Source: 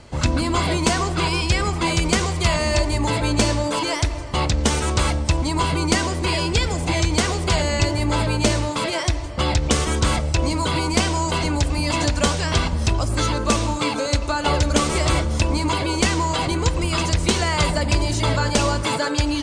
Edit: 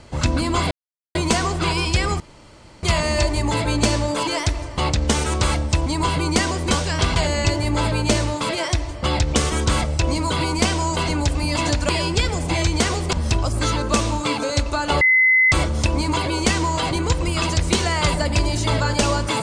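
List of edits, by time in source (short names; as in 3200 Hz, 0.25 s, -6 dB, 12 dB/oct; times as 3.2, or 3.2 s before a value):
0.71 insert silence 0.44 s
1.76–2.39 room tone
6.27–7.51 swap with 12.24–12.69
14.57–15.08 bleep 2040 Hz -11.5 dBFS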